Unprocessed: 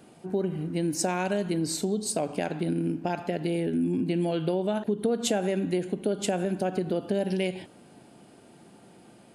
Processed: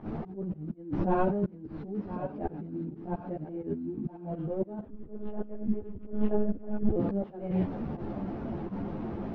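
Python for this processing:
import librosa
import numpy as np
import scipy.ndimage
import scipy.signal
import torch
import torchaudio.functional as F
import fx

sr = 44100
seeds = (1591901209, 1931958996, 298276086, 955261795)

y = fx.delta_mod(x, sr, bps=32000, step_db=-42.0)
y = scipy.signal.sosfilt(scipy.signal.butter(2, 1000.0, 'lowpass', fs=sr, output='sos'), y)
y = fx.low_shelf(y, sr, hz=230.0, db=11.5)
y = fx.over_compress(y, sr, threshold_db=-28.0, ratio=-0.5)
y = fx.auto_swell(y, sr, attack_ms=434.0)
y = fx.volume_shaper(y, sr, bpm=83, per_beat=1, depth_db=-21, release_ms=100.0, shape='fast start')
y = fx.echo_thinned(y, sr, ms=1016, feedback_pct=30, hz=490.0, wet_db=-12)
y = fx.lpc_monotone(y, sr, seeds[0], pitch_hz=210.0, order=10, at=(4.85, 6.96))
y = fx.ensemble(y, sr)
y = y * librosa.db_to_amplitude(6.5)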